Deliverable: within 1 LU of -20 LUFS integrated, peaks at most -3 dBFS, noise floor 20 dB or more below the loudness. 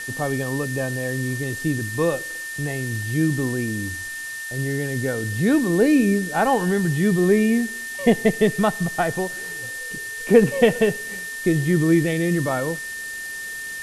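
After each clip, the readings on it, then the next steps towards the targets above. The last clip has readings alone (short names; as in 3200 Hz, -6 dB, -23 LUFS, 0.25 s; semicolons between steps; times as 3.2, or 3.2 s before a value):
steady tone 1800 Hz; tone level -30 dBFS; noise floor -32 dBFS; noise floor target -42 dBFS; loudness -22.0 LUFS; peak -2.0 dBFS; loudness target -20.0 LUFS
-> notch 1800 Hz, Q 30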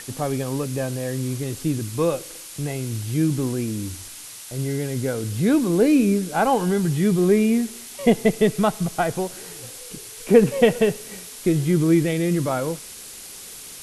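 steady tone none; noise floor -39 dBFS; noise floor target -42 dBFS
-> denoiser 6 dB, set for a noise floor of -39 dBFS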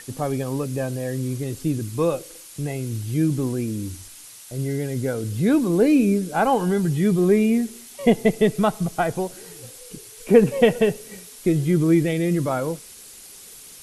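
noise floor -43 dBFS; loudness -22.0 LUFS; peak -2.5 dBFS; loudness target -20.0 LUFS
-> gain +2 dB; limiter -3 dBFS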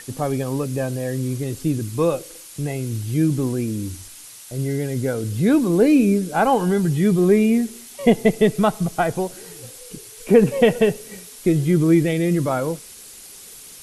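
loudness -20.0 LUFS; peak -3.0 dBFS; noise floor -41 dBFS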